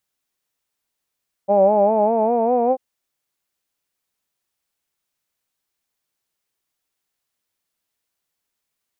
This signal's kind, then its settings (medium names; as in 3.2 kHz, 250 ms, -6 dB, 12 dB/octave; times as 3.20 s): formant-synthesis vowel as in hawed, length 1.29 s, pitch 194 Hz, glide +4.5 st, vibrato 5 Hz, vibrato depth 0.8 st